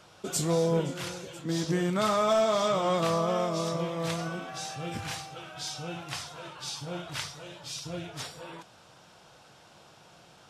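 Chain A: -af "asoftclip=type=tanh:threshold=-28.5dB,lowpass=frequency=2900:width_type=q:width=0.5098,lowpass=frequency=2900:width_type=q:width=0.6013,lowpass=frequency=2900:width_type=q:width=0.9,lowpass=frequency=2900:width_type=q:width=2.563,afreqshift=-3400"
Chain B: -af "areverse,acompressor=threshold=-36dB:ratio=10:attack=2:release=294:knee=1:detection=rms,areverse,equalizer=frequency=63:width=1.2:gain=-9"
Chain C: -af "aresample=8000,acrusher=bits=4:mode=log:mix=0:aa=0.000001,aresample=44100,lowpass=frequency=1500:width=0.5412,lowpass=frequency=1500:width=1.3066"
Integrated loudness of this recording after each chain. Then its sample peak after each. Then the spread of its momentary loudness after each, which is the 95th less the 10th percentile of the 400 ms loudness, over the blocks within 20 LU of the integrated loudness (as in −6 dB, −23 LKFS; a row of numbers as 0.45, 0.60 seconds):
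−32.5, −42.5, −30.5 LKFS; −21.0, −28.5, −16.5 dBFS; 14, 14, 19 LU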